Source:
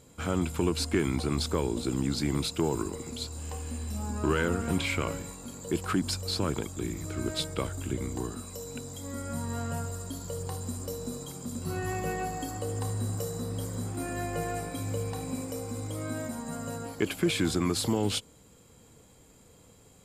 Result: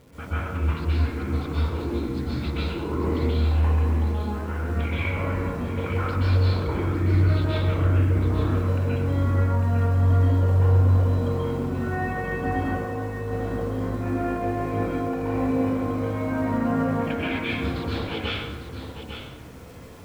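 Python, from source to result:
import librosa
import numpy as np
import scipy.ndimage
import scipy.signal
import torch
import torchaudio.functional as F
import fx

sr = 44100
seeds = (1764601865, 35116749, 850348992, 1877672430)

p1 = scipy.signal.sosfilt(scipy.signal.butter(4, 2600.0, 'lowpass', fs=sr, output='sos'), x)
p2 = fx.over_compress(p1, sr, threshold_db=-37.0, ratio=-1.0)
p3 = fx.dmg_crackle(p2, sr, seeds[0], per_s=560.0, level_db=-49.0)
p4 = p3 + fx.echo_single(p3, sr, ms=851, db=-9.0, dry=0)
y = fx.rev_plate(p4, sr, seeds[1], rt60_s=1.2, hf_ratio=0.6, predelay_ms=115, drr_db=-9.5)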